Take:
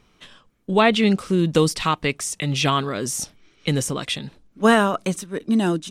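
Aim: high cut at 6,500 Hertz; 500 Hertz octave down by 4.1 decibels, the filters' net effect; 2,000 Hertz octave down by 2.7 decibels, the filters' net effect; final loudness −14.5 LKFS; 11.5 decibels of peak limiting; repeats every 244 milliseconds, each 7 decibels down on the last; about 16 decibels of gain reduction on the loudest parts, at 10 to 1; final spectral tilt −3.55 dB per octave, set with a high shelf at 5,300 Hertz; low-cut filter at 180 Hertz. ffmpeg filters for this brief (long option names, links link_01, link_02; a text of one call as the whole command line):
ffmpeg -i in.wav -af "highpass=180,lowpass=6500,equalizer=frequency=500:width_type=o:gain=-5,equalizer=frequency=2000:width_type=o:gain=-4,highshelf=frequency=5300:gain=5.5,acompressor=threshold=-30dB:ratio=10,alimiter=level_in=1dB:limit=-24dB:level=0:latency=1,volume=-1dB,aecho=1:1:244|488|732|976|1220:0.447|0.201|0.0905|0.0407|0.0183,volume=20.5dB" out.wav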